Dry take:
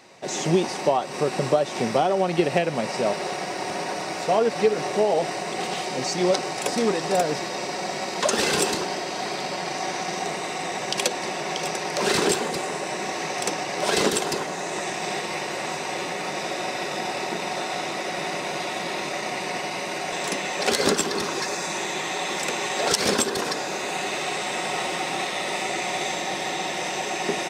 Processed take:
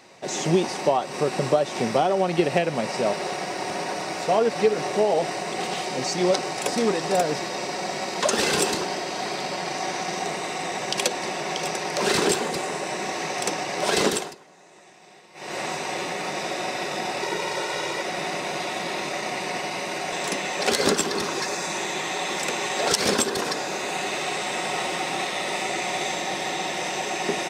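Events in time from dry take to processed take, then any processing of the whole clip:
0:14.11–0:15.58: duck −22 dB, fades 0.24 s
0:17.22–0:18.02: comb filter 2.1 ms

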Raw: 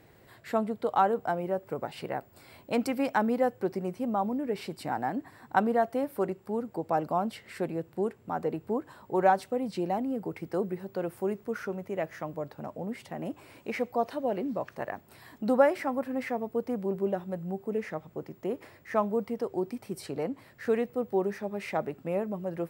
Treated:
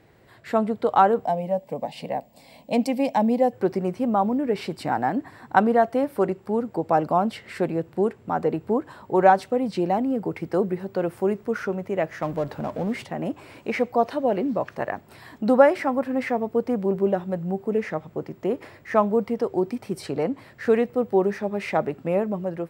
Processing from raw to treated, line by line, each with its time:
0:01.25–0:03.53: phaser with its sweep stopped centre 370 Hz, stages 6
0:12.22–0:13.04: mu-law and A-law mismatch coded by mu
whole clip: high-shelf EQ 9,900 Hz −11.5 dB; automatic gain control gain up to 6 dB; level +1.5 dB

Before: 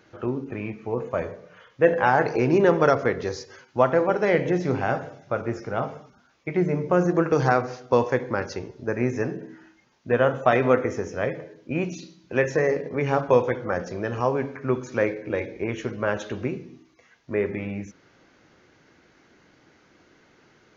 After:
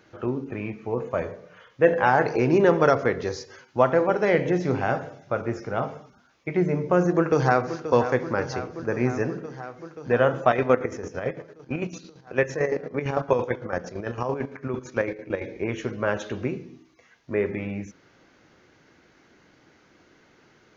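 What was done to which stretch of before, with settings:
0:07.13–0:07.83: delay throw 530 ms, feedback 80%, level −11.5 dB
0:10.47–0:15.45: square-wave tremolo 8.9 Hz, depth 60%, duty 45%

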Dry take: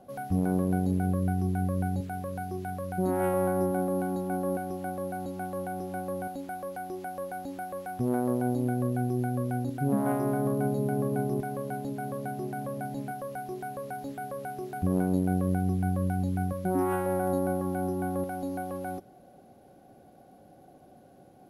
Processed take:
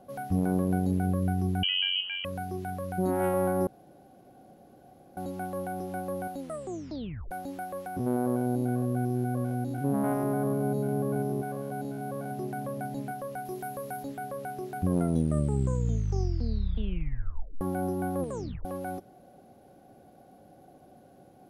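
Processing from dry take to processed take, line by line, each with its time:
0:01.63–0:02.25: voice inversion scrambler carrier 3,100 Hz
0:03.67–0:05.17: fill with room tone
0:06.39: tape stop 0.92 s
0:07.87–0:12.31: spectrum averaged block by block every 100 ms
0:13.45–0:14.03: high-shelf EQ 8,900 Hz +10 dB
0:14.84: tape stop 2.77 s
0:18.20: tape stop 0.45 s

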